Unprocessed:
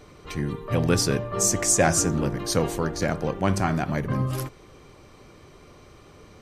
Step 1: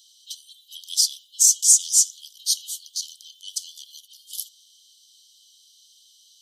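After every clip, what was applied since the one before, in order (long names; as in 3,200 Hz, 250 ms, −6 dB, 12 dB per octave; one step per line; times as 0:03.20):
Chebyshev high-pass filter 3,000 Hz, order 10
level +8 dB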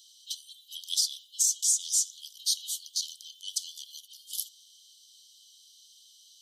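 dynamic equaliser 3,700 Hz, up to +6 dB, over −39 dBFS, Q 2.8
downward compressor 2.5 to 1, threshold −25 dBFS, peak gain reduction 10.5 dB
level −1.5 dB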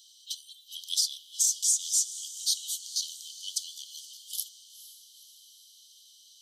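feedback delay with all-pass diffusion 478 ms, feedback 52%, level −14 dB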